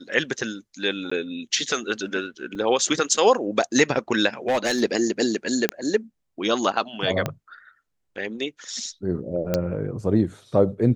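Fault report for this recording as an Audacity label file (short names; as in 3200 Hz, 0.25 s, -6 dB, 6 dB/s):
1.100000	1.110000	gap 15 ms
2.550000	2.550000	gap 2.6 ms
4.480000	4.830000	clipped -17 dBFS
5.690000	5.690000	pop -5 dBFS
7.260000	7.260000	pop -10 dBFS
9.540000	9.540000	pop -9 dBFS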